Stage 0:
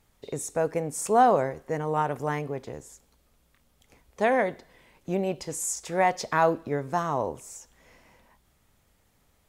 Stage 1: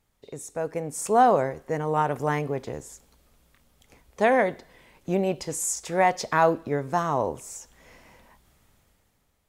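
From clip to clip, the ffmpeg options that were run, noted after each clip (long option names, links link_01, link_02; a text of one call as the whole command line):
ffmpeg -i in.wav -af "dynaudnorm=framelen=180:gausssize=9:maxgain=11dB,volume=-6dB" out.wav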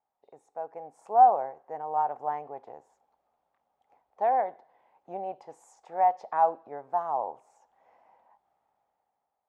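ffmpeg -i in.wav -af "bandpass=frequency=790:width_type=q:width=6:csg=0,volume=3dB" out.wav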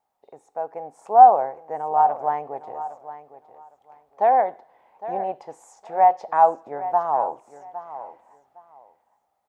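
ffmpeg -i in.wav -af "aecho=1:1:810|1620:0.2|0.0399,volume=7.5dB" out.wav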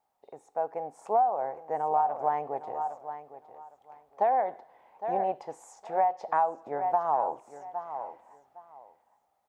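ffmpeg -i in.wav -af "acompressor=threshold=-20dB:ratio=16,volume=-1dB" out.wav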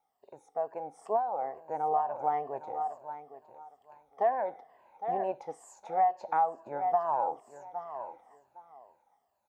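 ffmpeg -i in.wav -af "afftfilt=real='re*pow(10,11/40*sin(2*PI*(1.4*log(max(b,1)*sr/1024/100)/log(2)-(-2.2)*(pts-256)/sr)))':imag='im*pow(10,11/40*sin(2*PI*(1.4*log(max(b,1)*sr/1024/100)/log(2)-(-2.2)*(pts-256)/sr)))':win_size=1024:overlap=0.75,volume=-4dB" out.wav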